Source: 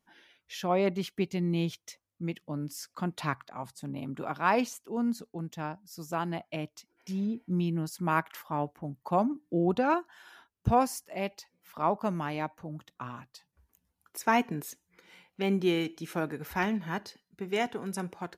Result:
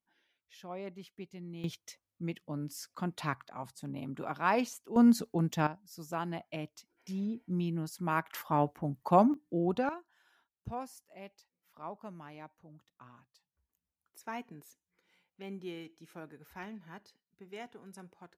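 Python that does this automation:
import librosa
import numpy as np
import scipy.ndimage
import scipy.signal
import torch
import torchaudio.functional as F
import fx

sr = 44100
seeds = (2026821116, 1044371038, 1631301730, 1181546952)

y = fx.gain(x, sr, db=fx.steps((0.0, -15.5), (1.64, -3.0), (4.96, 7.0), (5.67, -4.0), (8.33, 3.0), (9.34, -4.0), (9.89, -15.5)))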